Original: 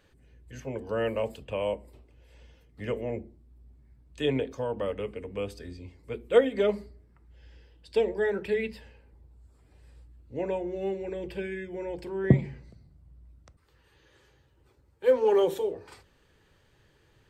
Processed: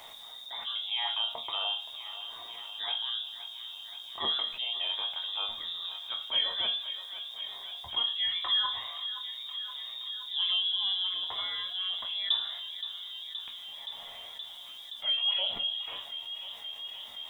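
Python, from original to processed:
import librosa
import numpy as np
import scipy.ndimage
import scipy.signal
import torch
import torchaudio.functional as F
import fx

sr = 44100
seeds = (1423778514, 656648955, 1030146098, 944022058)

y = fx.rattle_buzz(x, sr, strikes_db=-20.0, level_db=-30.0)
y = fx.freq_invert(y, sr, carrier_hz=3700)
y = fx.high_shelf(y, sr, hz=2000.0, db=9.5, at=(8.42, 11.07))
y = fx.quant_dither(y, sr, seeds[0], bits=12, dither='triangular')
y = fx.band_shelf(y, sr, hz=820.0, db=10.5, octaves=1.1)
y = fx.resonator_bank(y, sr, root=39, chord='minor', decay_s=0.25)
y = fx.echo_thinned(y, sr, ms=522, feedback_pct=75, hz=780.0, wet_db=-20.0)
y = fx.env_flatten(y, sr, amount_pct=50)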